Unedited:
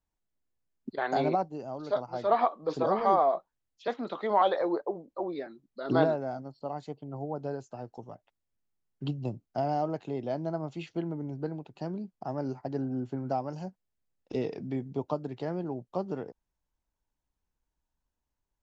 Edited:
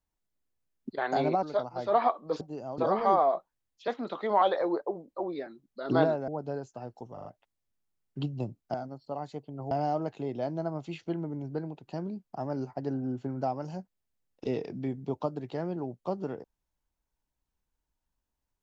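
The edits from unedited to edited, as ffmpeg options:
-filter_complex "[0:a]asplit=10[s0][s1][s2][s3][s4][s5][s6][s7][s8][s9];[s0]atrim=end=1.432[s10];[s1]atrim=start=1.798:end=2.782[s11];[s2]atrim=start=1.428:end=1.802[s12];[s3]atrim=start=2.778:end=6.282[s13];[s4]atrim=start=7.248:end=8.142[s14];[s5]atrim=start=8.098:end=8.142[s15];[s6]atrim=start=8.098:end=8.142[s16];[s7]atrim=start=8.098:end=9.592[s17];[s8]atrim=start=6.278:end=7.252[s18];[s9]atrim=start=9.588[s19];[s10][s11]acrossfade=d=0.004:c1=hsin:c2=hsin[s20];[s20][s12]acrossfade=d=0.004:c1=hsin:c2=hsin[s21];[s21][s13]acrossfade=d=0.004:c1=hsin:c2=hsin[s22];[s22][s14]acrossfade=d=0.004:c1=hsin:c2=hsin[s23];[s23][s15]acrossfade=d=0.004:c1=hsin:c2=hsin[s24];[s24][s16]acrossfade=d=0.004:c1=hsin:c2=hsin[s25];[s25][s17]acrossfade=d=0.004:c1=hsin:c2=hsin[s26];[s26][s18]acrossfade=d=0.004:c1=hsin:c2=hsin[s27];[s27][s19]acrossfade=d=0.004:c1=hsin:c2=hsin"

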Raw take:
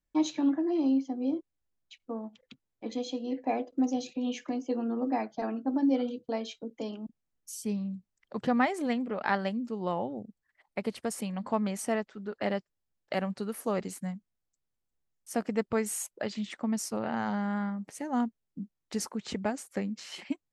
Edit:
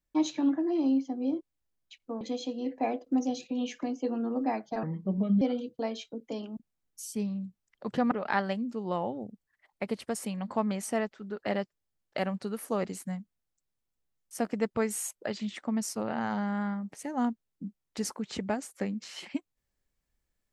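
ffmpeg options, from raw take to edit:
-filter_complex "[0:a]asplit=5[s0][s1][s2][s3][s4];[s0]atrim=end=2.212[s5];[s1]atrim=start=2.868:end=5.494[s6];[s2]atrim=start=5.49:end=5.91,asetpts=PTS-STARTPTS,asetrate=31752,aresample=44100[s7];[s3]atrim=start=5.906:end=8.612[s8];[s4]atrim=start=9.068[s9];[s5][s6]acrossfade=d=0.004:c1=hsin:c2=hsin[s10];[s10][s7]acrossfade=d=0.004:c1=hsin:c2=hsin[s11];[s11][s8]acrossfade=d=0.004:c1=hsin:c2=hsin[s12];[s12][s9]acrossfade=d=0.004:c1=hsin:c2=hsin"

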